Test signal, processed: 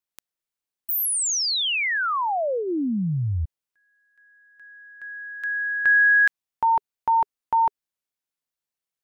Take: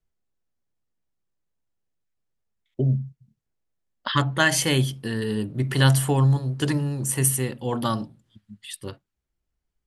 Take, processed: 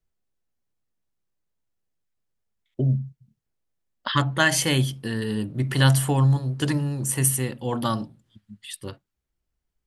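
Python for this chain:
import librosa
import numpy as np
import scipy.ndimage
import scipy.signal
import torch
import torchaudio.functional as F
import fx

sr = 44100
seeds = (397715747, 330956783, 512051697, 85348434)

y = fx.dynamic_eq(x, sr, hz=410.0, q=7.6, threshold_db=-42.0, ratio=4.0, max_db=-5)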